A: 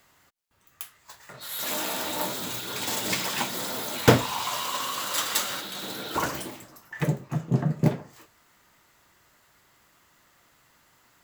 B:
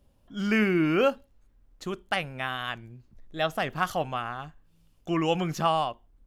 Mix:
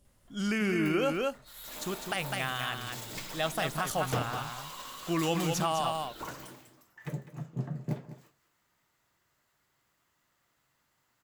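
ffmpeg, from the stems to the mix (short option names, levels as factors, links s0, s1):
-filter_complex "[0:a]adelay=50,volume=0.211,asplit=2[s0][s1];[s1]volume=0.211[s2];[1:a]equalizer=f=8900:w=0.8:g=13.5,volume=0.708,asplit=2[s3][s4];[s4]volume=0.501[s5];[s2][s5]amix=inputs=2:normalize=0,aecho=0:1:203:1[s6];[s0][s3][s6]amix=inputs=3:normalize=0,equalizer=f=130:t=o:w=0.4:g=4,alimiter=limit=0.106:level=0:latency=1:release=34"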